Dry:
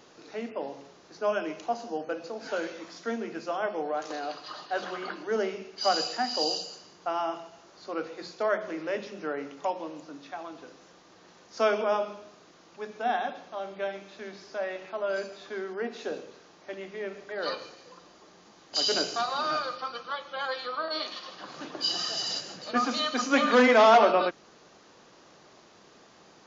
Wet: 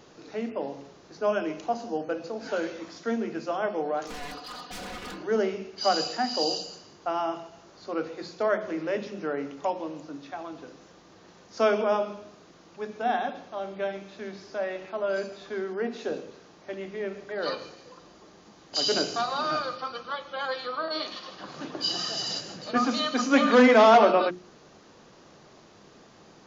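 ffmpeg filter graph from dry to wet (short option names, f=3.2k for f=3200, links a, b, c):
-filter_complex "[0:a]asettb=1/sr,asplit=3[a][b][c];[a]atrim=end=4.074[d];[b]atrim=start=4.07:end=5.18,asetpts=PTS-STARTPTS,afade=t=in:d=0.004:c=qsin,afade=t=out:st=1.106:d=0.004:c=qsin,aeval=exprs='0.015*(abs(mod(val(0)/0.015+3,4)-2)-1)':c=same,aecho=1:1:4.1:0.66,atrim=end_sample=48951[e];[c]atrim=start=5.176[f];[d][e]acrossfade=d=0.004:c1=hsin:c2=qsin[g];[g][f]acrossfade=d=0.004:c1=qsin:c2=hsin,lowshelf=f=300:g=9.5,bandreject=f=60:t=h:w=6,bandreject=f=120:t=h:w=6,bandreject=f=180:t=h:w=6,bandreject=f=240:t=h:w=6,bandreject=f=300:t=h:w=6,bandreject=f=360:t=h:w=6"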